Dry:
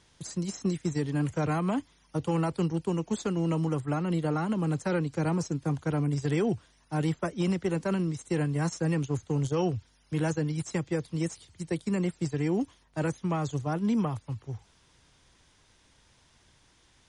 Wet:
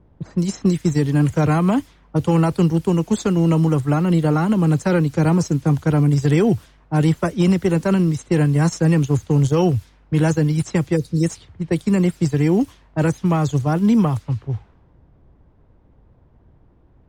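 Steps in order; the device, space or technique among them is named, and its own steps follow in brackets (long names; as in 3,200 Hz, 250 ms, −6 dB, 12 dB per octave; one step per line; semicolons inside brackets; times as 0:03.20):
time-frequency box erased 0:10.97–0:11.23, 570–3,600 Hz
cassette deck with a dynamic noise filter (white noise bed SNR 32 dB; low-pass that shuts in the quiet parts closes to 540 Hz, open at −27 dBFS)
low-shelf EQ 190 Hz +6 dB
level +9 dB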